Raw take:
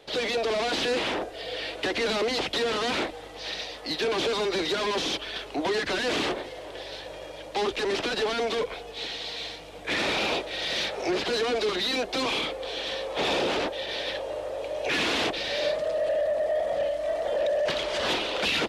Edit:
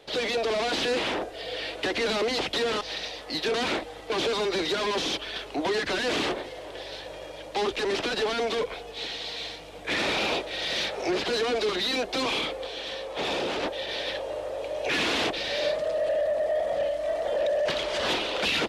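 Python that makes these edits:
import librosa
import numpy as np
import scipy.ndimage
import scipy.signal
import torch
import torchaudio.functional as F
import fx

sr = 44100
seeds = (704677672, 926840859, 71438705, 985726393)

y = fx.edit(x, sr, fx.move(start_s=2.81, length_s=0.56, to_s=4.1),
    fx.clip_gain(start_s=12.67, length_s=0.96, db=-3.0), tone=tone)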